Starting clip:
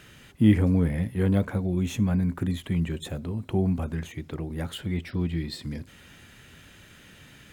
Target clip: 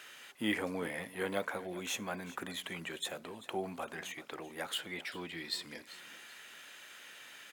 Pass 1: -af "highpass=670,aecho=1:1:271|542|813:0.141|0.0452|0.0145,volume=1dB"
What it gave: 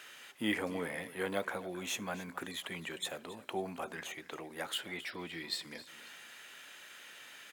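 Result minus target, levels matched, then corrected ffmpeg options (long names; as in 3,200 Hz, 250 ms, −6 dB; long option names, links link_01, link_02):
echo 118 ms early
-af "highpass=670,aecho=1:1:389|778|1167:0.141|0.0452|0.0145,volume=1dB"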